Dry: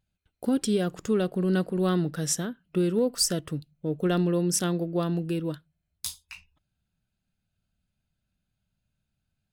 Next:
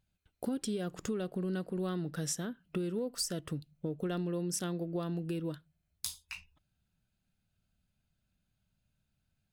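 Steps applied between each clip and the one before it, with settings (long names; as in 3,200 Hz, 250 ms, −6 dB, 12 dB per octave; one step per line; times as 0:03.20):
downward compressor 4 to 1, threshold −34 dBFS, peak gain reduction 12 dB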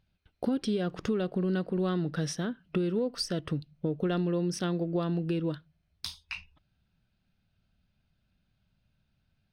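Savitzky-Golay smoothing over 15 samples
level +6 dB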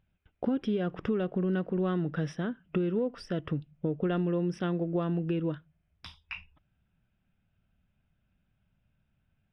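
Savitzky-Golay smoothing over 25 samples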